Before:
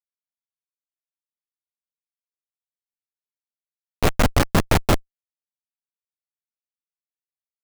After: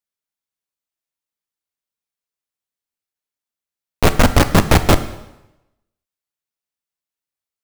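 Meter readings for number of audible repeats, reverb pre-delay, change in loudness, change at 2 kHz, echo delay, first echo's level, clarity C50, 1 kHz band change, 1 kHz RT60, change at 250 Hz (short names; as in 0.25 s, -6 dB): none, 4 ms, +6.0 dB, +6.0 dB, none, none, 13.5 dB, +6.0 dB, 0.90 s, +6.0 dB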